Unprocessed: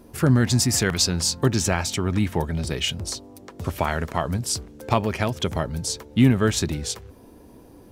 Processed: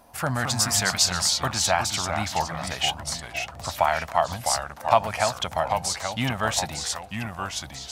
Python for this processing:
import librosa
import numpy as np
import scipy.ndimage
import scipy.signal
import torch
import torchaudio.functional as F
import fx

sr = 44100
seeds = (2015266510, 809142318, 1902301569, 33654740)

y = fx.echo_pitch(x, sr, ms=189, semitones=-2, count=2, db_per_echo=-6.0)
y = fx.low_shelf_res(y, sr, hz=530.0, db=-10.0, q=3.0)